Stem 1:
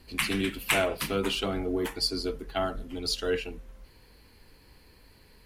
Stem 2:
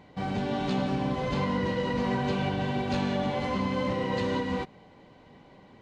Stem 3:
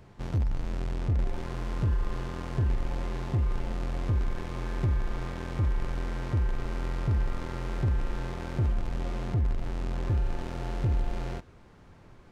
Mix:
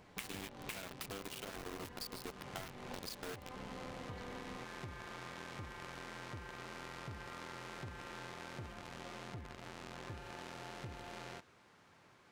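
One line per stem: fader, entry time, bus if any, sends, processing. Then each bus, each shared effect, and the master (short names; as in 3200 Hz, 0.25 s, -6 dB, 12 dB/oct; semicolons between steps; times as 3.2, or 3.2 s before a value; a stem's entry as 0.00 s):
-2.0 dB, 0.00 s, no send, low shelf 67 Hz -6 dB; compressor 20:1, threshold -29 dBFS, peak gain reduction 9.5 dB; bit-crush 5-bit
-6.0 dB, 0.00 s, no send, compressor, threshold -33 dBFS, peak gain reduction 9.5 dB; AM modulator 250 Hz, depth 95%
-7.5 dB, 0.00 s, no send, HPF 120 Hz 12 dB/oct; tilt shelf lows -6.5 dB, about 680 Hz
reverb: off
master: compressor, threshold -42 dBFS, peak gain reduction 13.5 dB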